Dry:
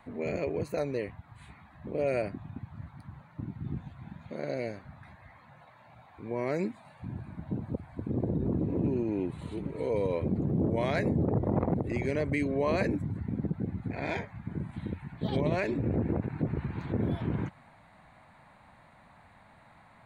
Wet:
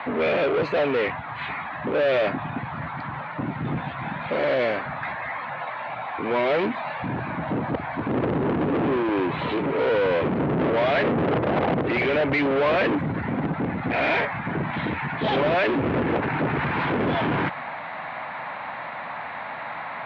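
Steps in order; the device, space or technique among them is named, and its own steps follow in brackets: overdrive pedal into a guitar cabinet (overdrive pedal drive 32 dB, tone 4200 Hz, clips at -16 dBFS; speaker cabinet 84–3400 Hz, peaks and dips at 99 Hz -6 dB, 200 Hz -5 dB, 350 Hz -3 dB); gain +2 dB

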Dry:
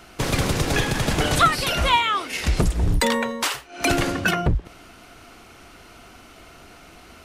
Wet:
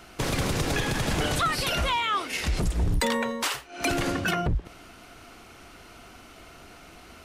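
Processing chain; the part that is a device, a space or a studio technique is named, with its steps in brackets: soft clipper into limiter (soft clip -8 dBFS, distortion -25 dB; limiter -16 dBFS, peak gain reduction 7 dB); gain -2 dB

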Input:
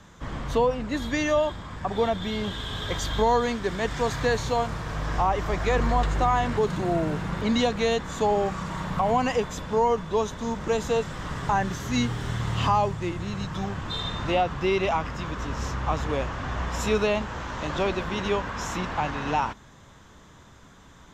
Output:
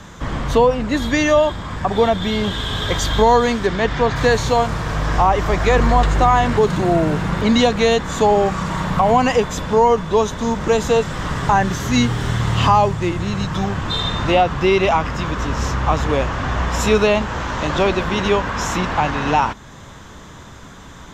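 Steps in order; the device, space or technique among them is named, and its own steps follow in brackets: parallel compression (in parallel at -4 dB: compressor, threshold -39 dBFS, peak gain reduction 19.5 dB); 3.66–4.15 on the sum: LPF 6000 Hz -> 3100 Hz 12 dB/oct; gain +8 dB

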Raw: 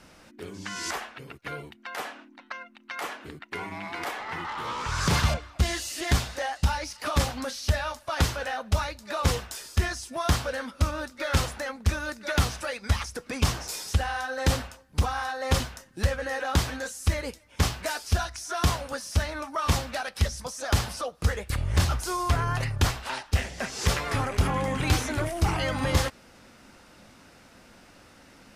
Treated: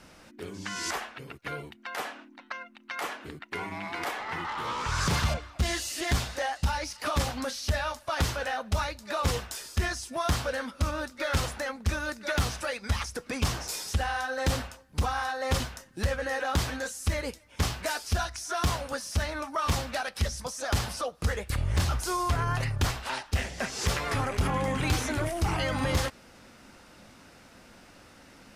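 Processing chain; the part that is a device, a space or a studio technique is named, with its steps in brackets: clipper into limiter (hard clip -15.5 dBFS, distortion -24 dB; limiter -19 dBFS, peak gain reduction 3.5 dB)

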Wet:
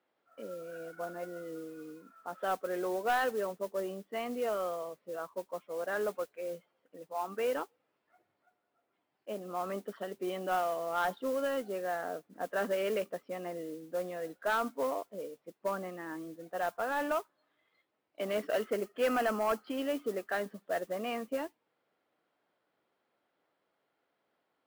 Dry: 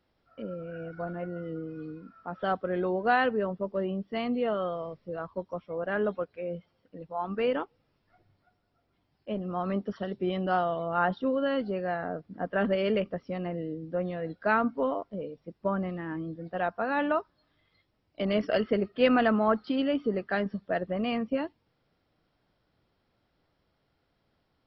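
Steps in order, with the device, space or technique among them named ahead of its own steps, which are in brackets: carbon microphone (BPF 370–2900 Hz; soft clip -20.5 dBFS, distortion -15 dB; modulation noise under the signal 20 dB); 18.72–19.76 notch 3700 Hz, Q 9.6; gain -2 dB

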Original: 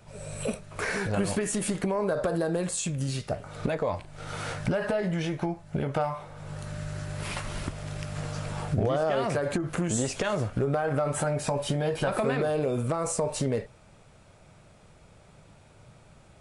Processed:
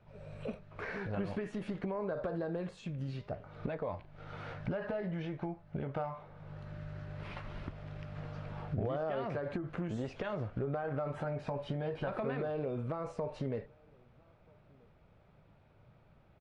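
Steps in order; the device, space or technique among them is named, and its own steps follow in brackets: shout across a valley (air absorption 300 m; outdoor echo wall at 220 m, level -28 dB); gain -8.5 dB

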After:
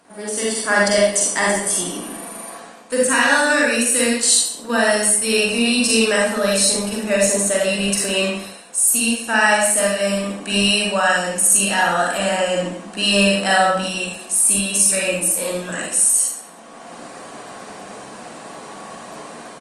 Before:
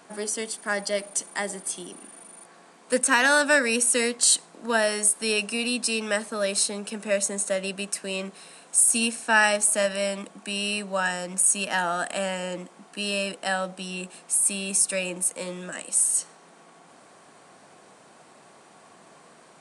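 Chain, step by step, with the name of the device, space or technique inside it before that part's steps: speakerphone in a meeting room (reverb RT60 0.70 s, pre-delay 38 ms, DRR -4 dB; speakerphone echo 0.13 s, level -22 dB; AGC gain up to 13 dB; gain -2 dB; Opus 32 kbps 48000 Hz)

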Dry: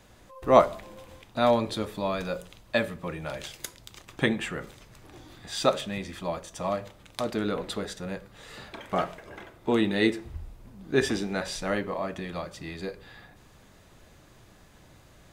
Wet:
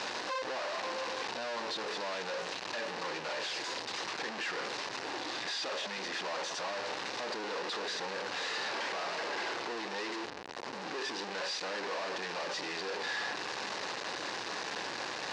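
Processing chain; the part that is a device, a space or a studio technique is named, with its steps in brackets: home computer beeper (infinite clipping; speaker cabinet 560–5000 Hz, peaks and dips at 640 Hz -6 dB, 1300 Hz -6 dB, 2200 Hz -5 dB, 3300 Hz -7 dB)

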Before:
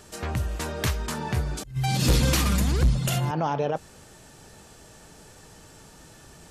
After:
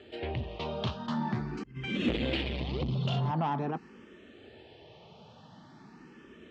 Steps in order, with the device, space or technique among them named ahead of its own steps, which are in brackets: barber-pole phaser into a guitar amplifier (endless phaser +0.45 Hz; soft clip -23.5 dBFS, distortion -11 dB; speaker cabinet 110–3700 Hz, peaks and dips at 230 Hz +7 dB, 370 Hz +5 dB, 1500 Hz -5 dB, 3100 Hz +4 dB)

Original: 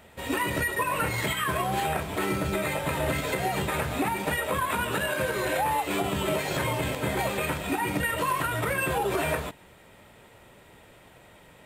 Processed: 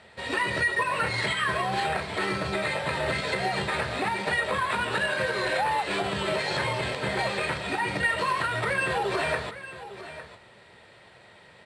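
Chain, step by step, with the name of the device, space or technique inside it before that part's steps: car door speaker (speaker cabinet 95–8200 Hz, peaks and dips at 160 Hz -4 dB, 280 Hz -9 dB, 1800 Hz +5 dB, 4300 Hz +9 dB, 6800 Hz -7 dB); echo 0.855 s -14 dB

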